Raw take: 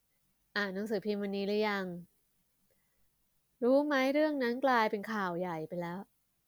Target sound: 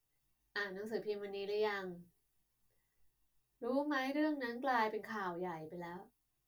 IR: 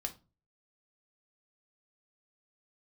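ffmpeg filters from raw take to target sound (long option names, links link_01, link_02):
-filter_complex "[1:a]atrim=start_sample=2205,afade=type=out:start_time=0.16:duration=0.01,atrim=end_sample=7497,asetrate=66150,aresample=44100[link_01];[0:a][link_01]afir=irnorm=-1:irlink=0,volume=-2.5dB"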